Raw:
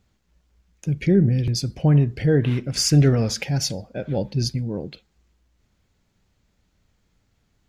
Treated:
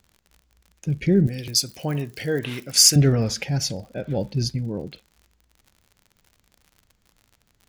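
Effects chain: crackle 69/s -39 dBFS; 1.27–2.96 RIAA curve recording; gain -1 dB

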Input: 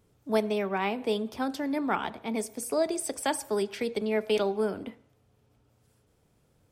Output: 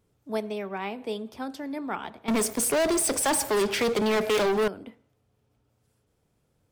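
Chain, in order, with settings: 2.28–4.68 sample leveller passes 5; gain -4 dB

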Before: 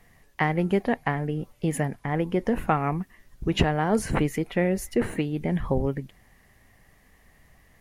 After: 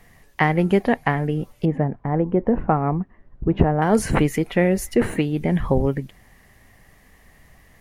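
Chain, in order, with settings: 1.65–3.82 LPF 1000 Hz 12 dB/oct; gain +5.5 dB

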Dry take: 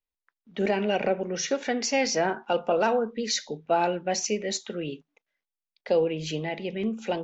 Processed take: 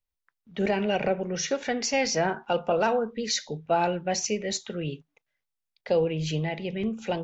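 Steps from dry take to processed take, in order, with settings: resonant low shelf 180 Hz +7 dB, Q 1.5

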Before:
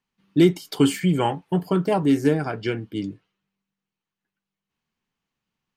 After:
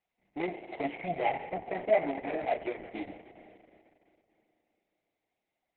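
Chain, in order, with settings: median filter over 25 samples; 1.85–3.08 comb 3.5 ms, depth 30%; in parallel at +2 dB: compressor 6:1, threshold -26 dBFS, peak gain reduction 14 dB; on the sum: soft clip -16 dBFS, distortion -10 dB; flange 1.9 Hz, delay 9.9 ms, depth 6.2 ms, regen +8%; double band-pass 1200 Hz, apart 1.6 oct; on a send at -9 dB: reverb RT60 2.9 s, pre-delay 35 ms; on the sum: gain +8.5 dB; Opus 6 kbps 48000 Hz

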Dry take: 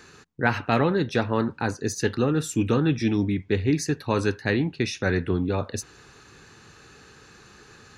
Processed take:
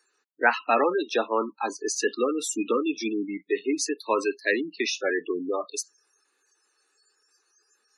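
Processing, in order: spectral noise reduction 24 dB; Bessel high-pass 460 Hz, order 8; spectral gate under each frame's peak -20 dB strong; gain +4 dB

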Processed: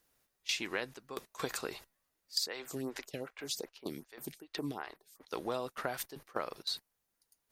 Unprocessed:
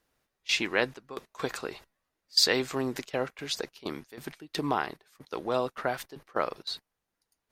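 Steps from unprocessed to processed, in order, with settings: high shelf 6200 Hz +12 dB; compressor 12:1, threshold -28 dBFS, peak gain reduction 15.5 dB; 2.46–5.28 photocell phaser 2.6 Hz; gain -3 dB

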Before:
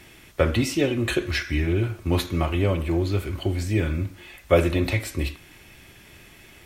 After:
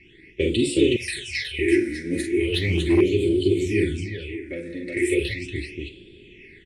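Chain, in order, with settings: tapped delay 41/47/368/603 ms -7.5/-6.5/-3.5/-7.5 dB; spring tank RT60 2.3 s, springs 39 ms, DRR 18.5 dB; phaser stages 8, 0.37 Hz, lowest notch 110–1900 Hz; soft clip -11 dBFS, distortion -21 dB; EQ curve 130 Hz 0 dB, 230 Hz +4 dB, 410 Hz +15 dB, 650 Hz -15 dB, 1200 Hz -28 dB, 1900 Hz +12 dB, 3500 Hz +10 dB, 6600 Hz +3 dB, 9500 Hz +14 dB, 13000 Hz -12 dB; 4.21–4.97 compressor 8:1, threshold -23 dBFS, peak gain reduction 10.5 dB; low-pass opened by the level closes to 2000 Hz, open at -13.5 dBFS; 0.96–1.59 passive tone stack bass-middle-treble 10-0-10; 2.54–3.01 sample leveller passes 1; gain -6 dB

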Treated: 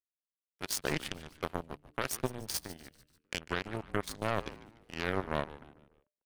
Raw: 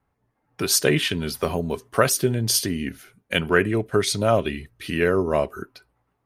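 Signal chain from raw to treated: limiter -10.5 dBFS, peak gain reduction 7 dB; power-law curve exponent 3; frequency-shifting echo 0.147 s, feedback 46%, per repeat -150 Hz, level -16 dB; gain -5 dB

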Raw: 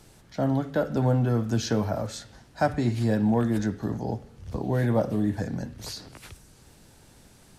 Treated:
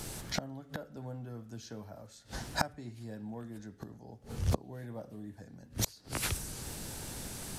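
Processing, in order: high shelf 6500 Hz +8 dB; flipped gate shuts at -27 dBFS, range -30 dB; gain +10 dB

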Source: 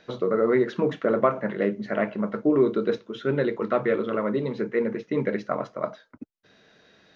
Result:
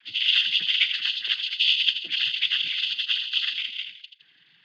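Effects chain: inverted band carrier 3600 Hz; granular stretch 0.65×, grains 82 ms; thin delay 82 ms, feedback 44%, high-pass 2800 Hz, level -5.5 dB; noise vocoder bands 16; band shelf 720 Hz -11 dB

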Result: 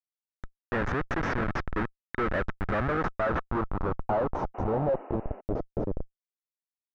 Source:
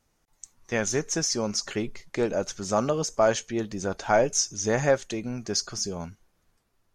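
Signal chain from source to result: Schmitt trigger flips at -26 dBFS; painted sound noise, 4.54–5.41, 200–3000 Hz -44 dBFS; low-pass sweep 1700 Hz -> 540 Hz, 2.68–5.75; small resonant body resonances 1300/3700 Hz, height 6 dB, ringing for 40 ms

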